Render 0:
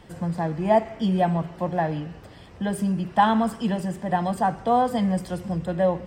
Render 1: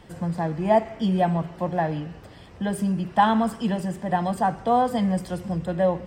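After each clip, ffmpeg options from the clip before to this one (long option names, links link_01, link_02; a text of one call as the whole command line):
ffmpeg -i in.wav -af anull out.wav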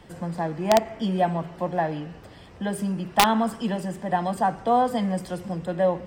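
ffmpeg -i in.wav -filter_complex "[0:a]acrossover=split=170[link_01][link_02];[link_01]aeval=exprs='(tanh(158*val(0)+0.15)-tanh(0.15))/158':channel_layout=same[link_03];[link_02]aeval=exprs='(mod(2.66*val(0)+1,2)-1)/2.66':channel_layout=same[link_04];[link_03][link_04]amix=inputs=2:normalize=0" out.wav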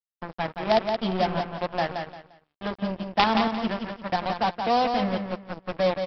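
ffmpeg -i in.wav -af "aresample=11025,acrusher=bits=3:mix=0:aa=0.5,aresample=44100,aecho=1:1:174|348|522:0.501|0.13|0.0339,volume=-2.5dB" out.wav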